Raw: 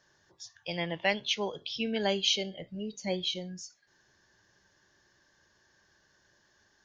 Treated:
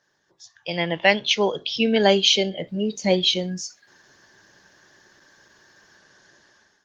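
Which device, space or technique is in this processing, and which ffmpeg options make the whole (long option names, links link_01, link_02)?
video call: -filter_complex "[0:a]asplit=3[link_01][link_02][link_03];[link_01]afade=type=out:start_time=1.28:duration=0.02[link_04];[link_02]equalizer=frequency=390:width_type=o:width=1.8:gain=2,afade=type=in:start_time=1.28:duration=0.02,afade=type=out:start_time=3.06:duration=0.02[link_05];[link_03]afade=type=in:start_time=3.06:duration=0.02[link_06];[link_04][link_05][link_06]amix=inputs=3:normalize=0,highpass=140,dynaudnorm=framelen=260:gausssize=5:maxgain=14.5dB" -ar 48000 -c:a libopus -b:a 20k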